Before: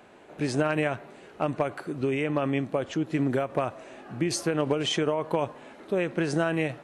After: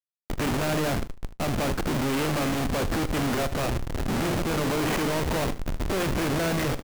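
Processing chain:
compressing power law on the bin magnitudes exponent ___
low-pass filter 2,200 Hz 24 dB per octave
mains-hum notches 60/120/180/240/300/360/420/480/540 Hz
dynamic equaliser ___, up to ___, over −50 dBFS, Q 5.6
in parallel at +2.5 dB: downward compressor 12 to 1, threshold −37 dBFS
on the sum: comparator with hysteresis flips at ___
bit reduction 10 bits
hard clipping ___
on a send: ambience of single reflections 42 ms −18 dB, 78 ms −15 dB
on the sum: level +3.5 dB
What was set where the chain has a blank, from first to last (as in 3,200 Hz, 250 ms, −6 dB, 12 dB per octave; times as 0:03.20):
0.59, 240 Hz, +5 dB, −33.5 dBFS, −29 dBFS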